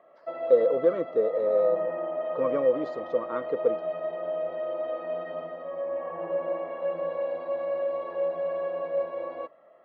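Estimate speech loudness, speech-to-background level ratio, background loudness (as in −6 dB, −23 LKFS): −26.5 LKFS, 5.5 dB, −32.0 LKFS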